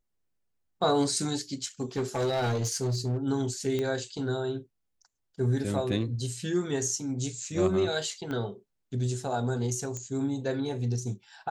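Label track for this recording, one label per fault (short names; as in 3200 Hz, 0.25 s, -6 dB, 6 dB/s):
1.810000	3.180000	clipped -24.5 dBFS
3.790000	3.790000	pop -18 dBFS
8.310000	8.310000	pop -23 dBFS
9.970000	9.970000	pop -23 dBFS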